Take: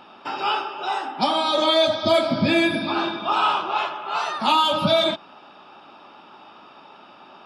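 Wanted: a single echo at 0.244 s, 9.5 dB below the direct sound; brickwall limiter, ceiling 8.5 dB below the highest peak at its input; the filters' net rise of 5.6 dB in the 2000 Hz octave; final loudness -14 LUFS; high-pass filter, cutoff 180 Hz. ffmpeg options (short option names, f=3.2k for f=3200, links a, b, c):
-af "highpass=180,equalizer=f=2k:t=o:g=7.5,alimiter=limit=-14dB:level=0:latency=1,aecho=1:1:244:0.335,volume=8.5dB"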